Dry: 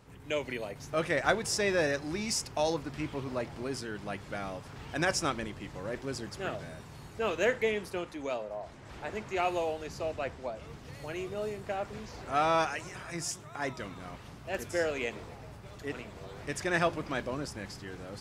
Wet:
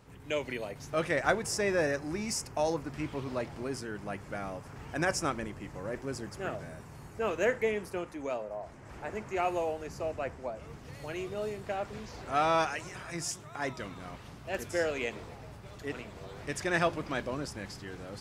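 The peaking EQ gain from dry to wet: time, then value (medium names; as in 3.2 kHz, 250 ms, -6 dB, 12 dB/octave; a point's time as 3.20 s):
peaking EQ 3.7 kHz 0.82 oct
1.02 s -1 dB
1.56 s -9.5 dB
2.75 s -9.5 dB
3.31 s +1.5 dB
3.86 s -9 dB
10.50 s -9 dB
11.10 s 0 dB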